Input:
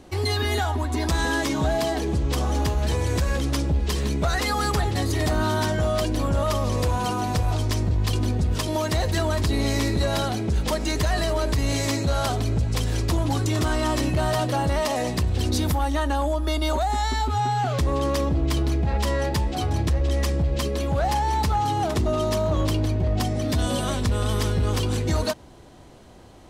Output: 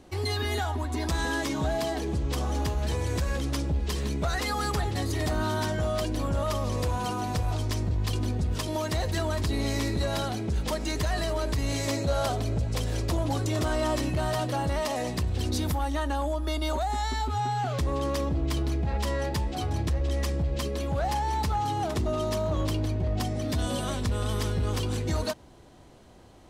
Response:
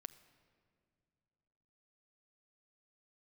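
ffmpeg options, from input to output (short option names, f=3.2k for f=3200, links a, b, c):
-filter_complex "[0:a]asettb=1/sr,asplit=3[a][b][c];[a]atrim=end=11.874[d];[b]atrim=start=11.87:end=13.96,asetpts=PTS-STARTPTS,afade=t=in:d=0.004:c=qsin,afade=t=out:st=2.086:d=0.004:c=qsin,equalizer=f=580:t=o:w=0.57:g=6[e];[c]atrim=start=13.956[f];[d][e]acrossfade=d=0.004:c1=hsin:c2=qsin[g];[g][f]acrossfade=d=0.004:c1=qsin:c2=hsin,volume=-5dB"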